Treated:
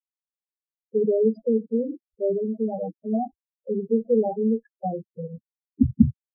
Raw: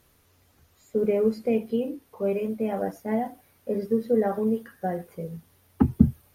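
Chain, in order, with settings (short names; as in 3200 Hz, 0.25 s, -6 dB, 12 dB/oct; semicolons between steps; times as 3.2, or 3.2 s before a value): sample gate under -36 dBFS; loudest bins only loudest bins 4; gain +3 dB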